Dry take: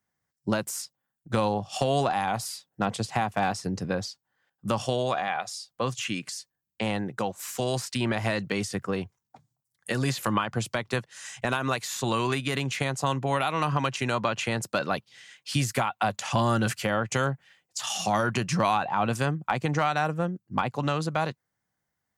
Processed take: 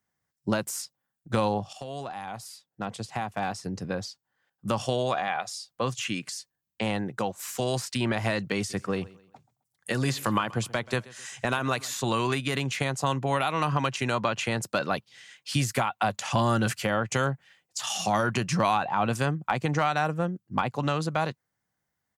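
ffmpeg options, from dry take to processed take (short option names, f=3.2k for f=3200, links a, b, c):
-filter_complex "[0:a]asplit=3[a][b][c];[a]afade=t=out:st=8.69:d=0.02[d];[b]aecho=1:1:131|262|393:0.0891|0.0312|0.0109,afade=t=in:st=8.69:d=0.02,afade=t=out:st=11.93:d=0.02[e];[c]afade=t=in:st=11.93:d=0.02[f];[d][e][f]amix=inputs=3:normalize=0,asplit=2[g][h];[g]atrim=end=1.73,asetpts=PTS-STARTPTS,afade=t=out:st=1.726:d=0.004:c=hsin:silence=0.188365[i];[h]atrim=start=1.73,asetpts=PTS-STARTPTS,afade=t=in:d=3.24:silence=0.188365[j];[i][j]concat=n=2:v=0:a=1"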